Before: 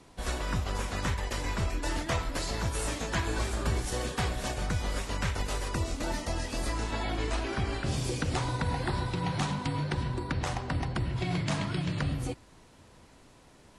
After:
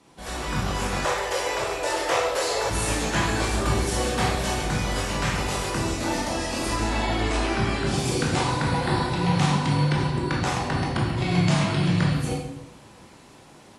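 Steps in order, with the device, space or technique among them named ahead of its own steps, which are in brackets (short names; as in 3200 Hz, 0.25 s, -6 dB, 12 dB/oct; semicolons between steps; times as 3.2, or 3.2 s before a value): far laptop microphone (reverb RT60 0.85 s, pre-delay 16 ms, DRR -3 dB; HPF 140 Hz 6 dB/oct; AGC gain up to 6 dB); 1.05–2.7 resonant low shelf 330 Hz -12.5 dB, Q 3; gain -2 dB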